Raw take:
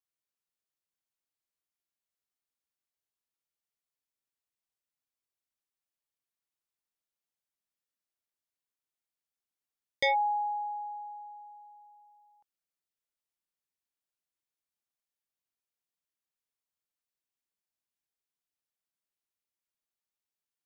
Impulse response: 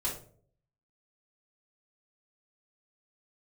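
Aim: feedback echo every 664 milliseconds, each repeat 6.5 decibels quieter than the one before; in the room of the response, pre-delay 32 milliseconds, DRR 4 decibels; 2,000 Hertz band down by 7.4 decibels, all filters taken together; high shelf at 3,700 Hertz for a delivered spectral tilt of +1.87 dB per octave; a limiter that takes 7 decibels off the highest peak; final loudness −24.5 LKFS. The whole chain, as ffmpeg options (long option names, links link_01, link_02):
-filter_complex "[0:a]equalizer=frequency=2000:width_type=o:gain=-7,highshelf=frequency=3700:gain=-3.5,alimiter=level_in=5dB:limit=-24dB:level=0:latency=1,volume=-5dB,aecho=1:1:664|1328|1992|2656|3320|3984:0.473|0.222|0.105|0.0491|0.0231|0.0109,asplit=2[link_01][link_02];[1:a]atrim=start_sample=2205,adelay=32[link_03];[link_02][link_03]afir=irnorm=-1:irlink=0,volume=-8dB[link_04];[link_01][link_04]amix=inputs=2:normalize=0,volume=16.5dB"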